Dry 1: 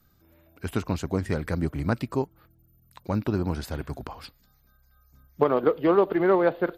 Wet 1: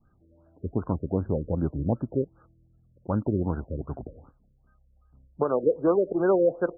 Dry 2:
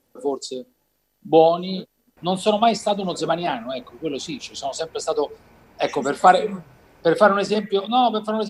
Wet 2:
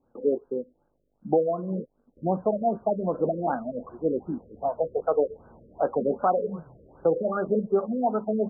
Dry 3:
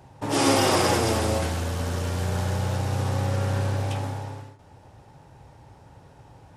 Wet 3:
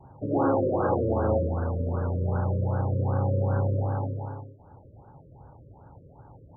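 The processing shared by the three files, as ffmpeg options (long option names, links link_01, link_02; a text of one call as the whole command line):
ffmpeg -i in.wav -af "adynamicequalizer=threshold=0.0141:dfrequency=520:dqfactor=6.6:tfrequency=520:tqfactor=6.6:attack=5:release=100:ratio=0.375:range=2.5:mode=boostabove:tftype=bell,alimiter=limit=-12dB:level=0:latency=1:release=473,afftfilt=real='re*lt(b*sr/1024,580*pow(1700/580,0.5+0.5*sin(2*PI*2.6*pts/sr)))':imag='im*lt(b*sr/1024,580*pow(1700/580,0.5+0.5*sin(2*PI*2.6*pts/sr)))':win_size=1024:overlap=0.75" out.wav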